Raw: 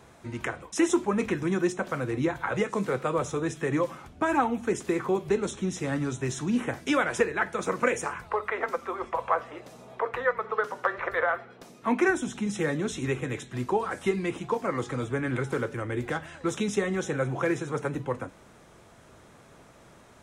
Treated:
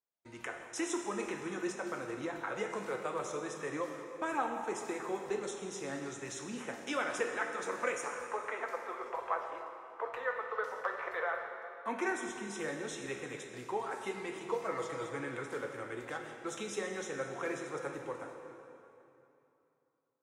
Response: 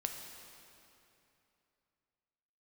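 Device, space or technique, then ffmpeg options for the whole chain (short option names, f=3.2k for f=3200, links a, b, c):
swimming-pool hall: -filter_complex "[0:a]agate=range=-37dB:threshold=-42dB:ratio=16:detection=peak,asettb=1/sr,asplit=3[a][b][c];[a]atrim=end=14.354[d];[b]atrim=start=14.35:end=15.23,asetpts=PTS-STARTPTS,afade=t=in:d=0.004:c=qsin,afade=t=out:st=0.876:d=0.004:c=qsin,aecho=1:1:6.2:0.77,atrim=end_sample=38808[e];[c]atrim=start=15.226[f];[d][e]acrossfade=d=0.004:c1=hsin:c2=qsin[g];[g][f]acrossfade=d=0.004:c1=qsin:c2=hsin,bass=f=250:g=-14,treble=f=4k:g=7[h];[1:a]atrim=start_sample=2205[i];[h][i]afir=irnorm=-1:irlink=0,highshelf=f=5.7k:g=-7,volume=-8dB"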